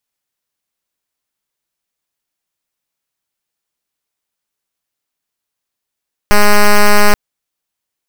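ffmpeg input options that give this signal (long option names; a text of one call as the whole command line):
ffmpeg -f lavfi -i "aevalsrc='0.531*(2*lt(mod(207*t,1),0.06)-1)':duration=0.83:sample_rate=44100" out.wav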